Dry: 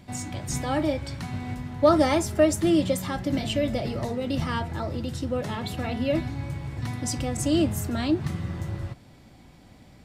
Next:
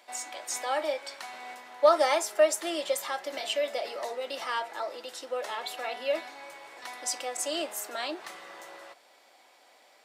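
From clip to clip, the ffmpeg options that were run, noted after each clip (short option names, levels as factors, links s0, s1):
-af "highpass=f=520:w=0.5412,highpass=f=520:w=1.3066"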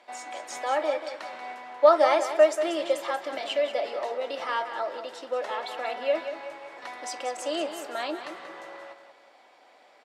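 -af "aemphasis=mode=reproduction:type=75fm,aecho=1:1:185|370|555|740:0.316|0.117|0.0433|0.016,volume=1.41"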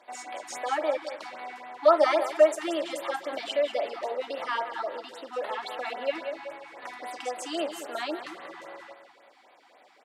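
-af "afftfilt=real='re*(1-between(b*sr/1024,460*pow(7000/460,0.5+0.5*sin(2*PI*3.7*pts/sr))/1.41,460*pow(7000/460,0.5+0.5*sin(2*PI*3.7*pts/sr))*1.41))':imag='im*(1-between(b*sr/1024,460*pow(7000/460,0.5+0.5*sin(2*PI*3.7*pts/sr))/1.41,460*pow(7000/460,0.5+0.5*sin(2*PI*3.7*pts/sr))*1.41))':win_size=1024:overlap=0.75"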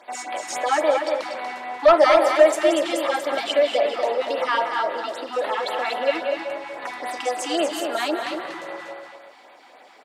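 -filter_complex "[0:a]asoftclip=type=tanh:threshold=0.2,asplit=2[s0][s1];[s1]aecho=0:1:239:0.501[s2];[s0][s2]amix=inputs=2:normalize=0,volume=2.51"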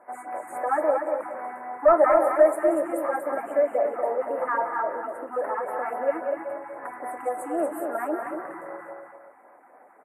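-af "asuperstop=centerf=4300:order=8:qfactor=0.54,volume=0.708" -ar 32000 -c:a libvorbis -b:a 48k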